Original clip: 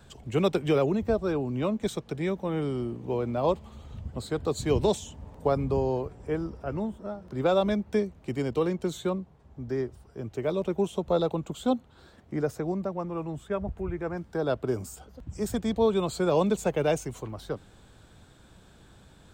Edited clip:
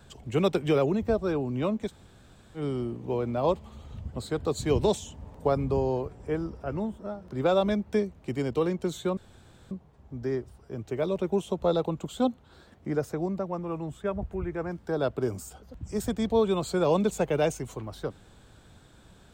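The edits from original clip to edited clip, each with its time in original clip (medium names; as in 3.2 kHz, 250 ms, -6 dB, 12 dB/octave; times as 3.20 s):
1.87–2.59 s: room tone, crossfade 0.10 s
9.17 s: insert room tone 0.54 s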